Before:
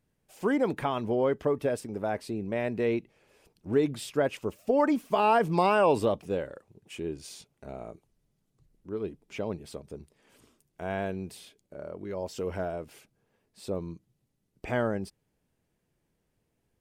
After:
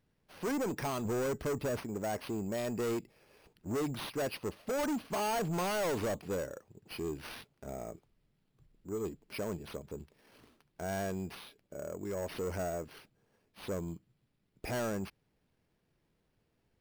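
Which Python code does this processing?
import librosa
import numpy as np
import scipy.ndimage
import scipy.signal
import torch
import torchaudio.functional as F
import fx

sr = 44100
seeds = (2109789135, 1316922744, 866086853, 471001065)

y = fx.low_shelf(x, sr, hz=180.0, db=8.0, at=(1.05, 1.78))
y = np.repeat(y[::6], 6)[:len(y)]
y = 10.0 ** (-30.5 / 20.0) * np.tanh(y / 10.0 ** (-30.5 / 20.0))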